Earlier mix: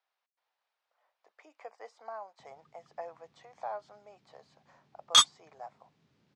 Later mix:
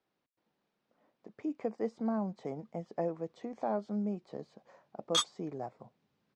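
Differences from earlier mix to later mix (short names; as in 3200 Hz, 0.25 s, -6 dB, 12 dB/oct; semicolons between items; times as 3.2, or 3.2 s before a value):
speech: remove HPF 700 Hz 24 dB/oct; background -9.5 dB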